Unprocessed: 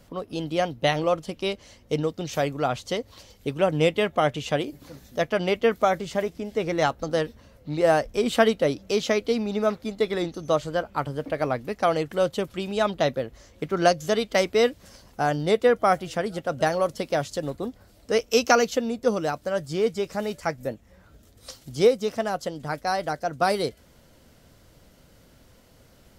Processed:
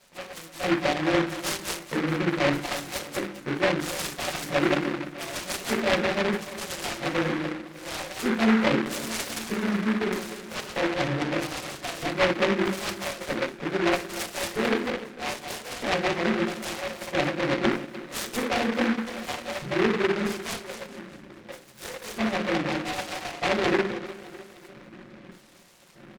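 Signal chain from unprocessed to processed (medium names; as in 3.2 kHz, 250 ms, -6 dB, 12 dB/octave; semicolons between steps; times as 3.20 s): chunks repeated in reverse 122 ms, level -6 dB; low-pass 4.6 kHz 12 dB/octave; treble shelf 2.6 kHz -10.5 dB; hum notches 50/100/150/200/250/300/350/400/450 Hz; comb 5.6 ms, depth 67%; reverse; compression 4:1, threshold -31 dBFS, peak gain reduction 17 dB; reverse; LFO band-pass square 0.79 Hz 330–2600 Hz; two-band feedback delay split 1 kHz, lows 301 ms, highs 210 ms, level -15 dB; reverberation RT60 0.35 s, pre-delay 7 ms, DRR -4.5 dB; delay time shaken by noise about 1.4 kHz, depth 0.21 ms; trim +8 dB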